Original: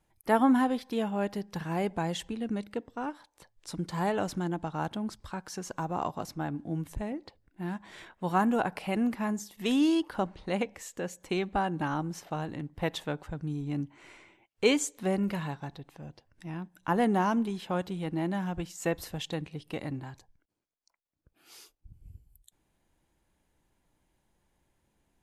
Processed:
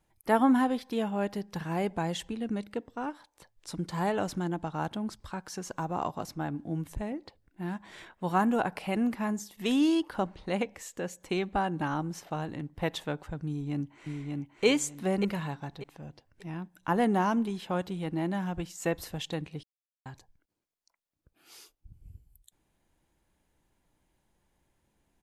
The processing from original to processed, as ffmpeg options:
ffmpeg -i in.wav -filter_complex "[0:a]asplit=2[link_01][link_02];[link_02]afade=type=in:start_time=13.47:duration=0.01,afade=type=out:start_time=14.65:duration=0.01,aecho=0:1:590|1180|1770|2360:0.707946|0.176986|0.0442466|0.0110617[link_03];[link_01][link_03]amix=inputs=2:normalize=0,asettb=1/sr,asplit=3[link_04][link_05][link_06];[link_04]atrim=end=19.634[link_07];[link_05]atrim=start=19.63:end=20.06,asetpts=PTS-STARTPTS,afade=type=in:duration=0.004:curve=qsin,afade=type=out:start_time=0.426:duration=0.004:curve=qsin,acrusher=bits=2:mix=0:aa=0.5[link_08];[link_06]atrim=start=20.056[link_09];[link_07][link_08]acrossfade=duration=0.004:curve1=hsin:curve2=qsin[link_10];[link_10][link_09]acrossfade=duration=0.004:curve1=qsin:curve2=hsin" out.wav

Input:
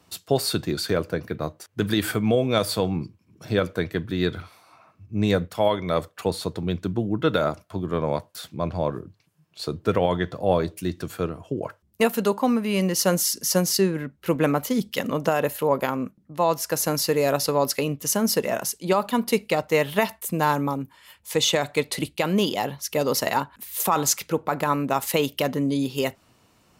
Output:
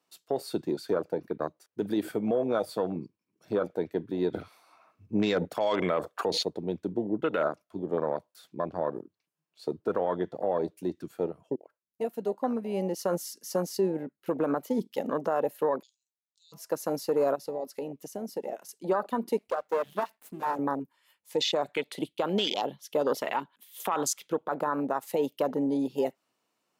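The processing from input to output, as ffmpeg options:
ffmpeg -i in.wav -filter_complex "[0:a]asplit=3[link_01][link_02][link_03];[link_01]afade=type=out:start_time=15.81:duration=0.02[link_04];[link_02]asuperpass=centerf=5600:order=12:qfactor=1.1,afade=type=in:start_time=15.81:duration=0.02,afade=type=out:start_time=16.52:duration=0.02[link_05];[link_03]afade=type=in:start_time=16.52:duration=0.02[link_06];[link_04][link_05][link_06]amix=inputs=3:normalize=0,asettb=1/sr,asplit=3[link_07][link_08][link_09];[link_07]atrim=end=17.354[link_10];[link_08]atrim=start=17.35:end=18.69,asetpts=PTS-STARTPTS,afade=type=in:duration=0.004:curve=qsin,afade=type=out:start_time=1.336:duration=0.004:curve=qsin,acompressor=threshold=-31dB:ratio=2.5:attack=3.2:release=140:knee=1:detection=peak[link_11];[link_09]atrim=start=18.686[link_12];[link_10][link_11]acrossfade=duration=0.004:curve1=hsin:curve2=qsin[link_13];[link_13][link_12]acrossfade=duration=0.004:curve1=qsin:curve2=hsin,asettb=1/sr,asplit=3[link_14][link_15][link_16];[link_14]atrim=end=19.374[link_17];[link_15]atrim=start=19.37:end=20.59,asetpts=PTS-STARTPTS,afade=type=in:duration=0.004:curve=qsin,afade=type=out:start_time=1.216:duration=0.004:curve=qsin,aeval=exprs='max(val(0),0)':channel_layout=same[link_18];[link_16]atrim=start=20.586[link_19];[link_17][link_18]acrossfade=duration=0.004:curve1=hsin:curve2=qsin[link_20];[link_20][link_19]acrossfade=duration=0.004:curve1=qsin:curve2=hsin,asettb=1/sr,asplit=3[link_21][link_22][link_23];[link_21]atrim=end=21.734[link_24];[link_22]atrim=start=21.73:end=24.56,asetpts=PTS-STARTPTS,afade=type=in:duration=0.004:curve=qsin,afade=type=out:start_time=2.826:duration=0.004:curve=qsin,equalizer=frequency=3300:width_type=o:width=0.36:gain=11.5[link_25];[link_23]atrim=start=24.556[link_26];[link_24][link_25]acrossfade=duration=0.004:curve1=hsin:curve2=qsin[link_27];[link_27][link_26]acrossfade=duration=0.004:curve1=qsin:curve2=hsin,asplit=4[link_28][link_29][link_30][link_31];[link_28]atrim=end=4.342[link_32];[link_29]atrim=start=4.338:end=6.432,asetpts=PTS-STARTPTS,volume=10dB[link_33];[link_30]atrim=start=6.428:end=11.56,asetpts=PTS-STARTPTS,afade=type=out:start_time=5.128:duration=0.004:curve=hsin:silence=0.125893[link_34];[link_31]atrim=start=11.56,asetpts=PTS-STARTPTS,afade=type=in:duration=1.66:silence=0.125893[link_35];[link_32][link_33]acrossfade=duration=0.004:curve1=hsin:curve2=hsin[link_36];[link_34][link_35]concat=n=2:v=0:a=1[link_37];[link_36][link_37]acrossfade=duration=0.004:curve1=hsin:curve2=hsin,afwtdn=0.0501,highpass=300,alimiter=limit=-17.5dB:level=0:latency=1:release=70" out.wav

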